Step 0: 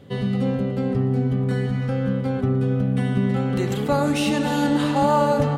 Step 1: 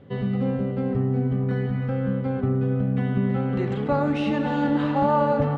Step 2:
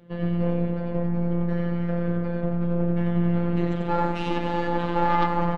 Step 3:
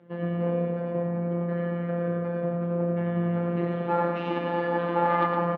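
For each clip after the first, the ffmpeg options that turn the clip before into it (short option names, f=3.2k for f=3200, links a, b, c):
-af "lowpass=2.3k,volume=-2dB"
-af "aecho=1:1:90.38|268.2:0.708|0.316,aeval=exprs='0.473*(cos(1*acos(clip(val(0)/0.473,-1,1)))-cos(1*PI/2))+0.237*(cos(2*acos(clip(val(0)/0.473,-1,1)))-cos(2*PI/2))+0.075*(cos(4*acos(clip(val(0)/0.473,-1,1)))-cos(4*PI/2))+0.0668*(cos(6*acos(clip(val(0)/0.473,-1,1)))-cos(6*PI/2))':c=same,afftfilt=real='hypot(re,im)*cos(PI*b)':imag='0':win_size=1024:overlap=0.75"
-filter_complex "[0:a]highpass=190,lowpass=2.2k,asplit=2[a][b];[b]aecho=0:1:112:0.473[c];[a][c]amix=inputs=2:normalize=0"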